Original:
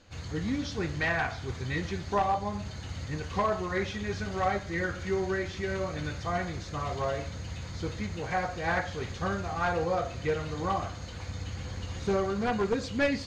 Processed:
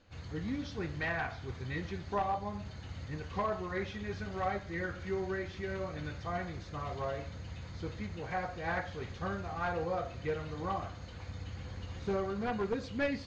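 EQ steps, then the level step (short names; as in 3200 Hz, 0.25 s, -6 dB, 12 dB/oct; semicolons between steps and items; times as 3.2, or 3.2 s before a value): air absorption 100 m; -5.5 dB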